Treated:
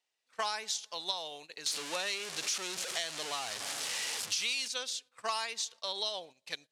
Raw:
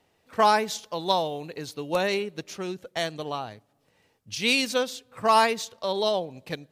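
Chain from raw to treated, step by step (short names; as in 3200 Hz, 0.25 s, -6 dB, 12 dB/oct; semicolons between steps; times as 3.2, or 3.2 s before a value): 1.66–4.68 zero-crossing step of -25.5 dBFS; weighting filter ITU-R 468; gate -40 dBFS, range -12 dB; compressor 12:1, threshold -21 dBFS, peak gain reduction 13 dB; gain -9 dB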